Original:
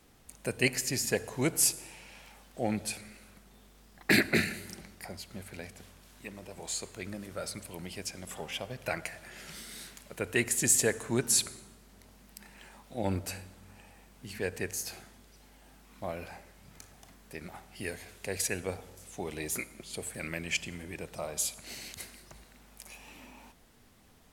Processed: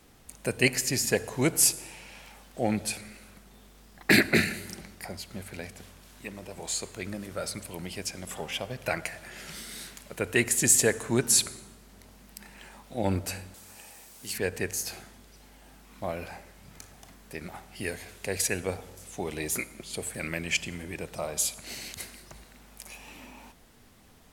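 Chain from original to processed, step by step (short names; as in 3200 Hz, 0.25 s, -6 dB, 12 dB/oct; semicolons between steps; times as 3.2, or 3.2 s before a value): 13.54–14.38 tone controls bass -9 dB, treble +12 dB; gain +4 dB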